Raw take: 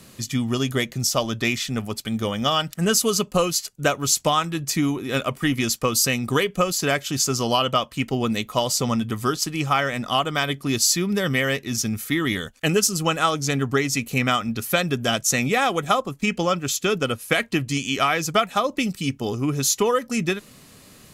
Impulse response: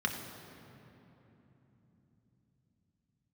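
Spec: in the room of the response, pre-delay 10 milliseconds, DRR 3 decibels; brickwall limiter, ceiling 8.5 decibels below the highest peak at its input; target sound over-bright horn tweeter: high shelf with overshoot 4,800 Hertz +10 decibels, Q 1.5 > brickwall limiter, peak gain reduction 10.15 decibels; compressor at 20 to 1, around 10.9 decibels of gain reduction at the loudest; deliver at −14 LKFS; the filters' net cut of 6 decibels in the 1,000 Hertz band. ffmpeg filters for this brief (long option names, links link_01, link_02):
-filter_complex "[0:a]equalizer=frequency=1000:width_type=o:gain=-8,acompressor=threshold=-27dB:ratio=20,alimiter=limit=-22dB:level=0:latency=1,asplit=2[link_01][link_02];[1:a]atrim=start_sample=2205,adelay=10[link_03];[link_02][link_03]afir=irnorm=-1:irlink=0,volume=-10dB[link_04];[link_01][link_04]amix=inputs=2:normalize=0,highshelf=frequency=4800:width_type=q:width=1.5:gain=10,volume=16dB,alimiter=limit=-3.5dB:level=0:latency=1"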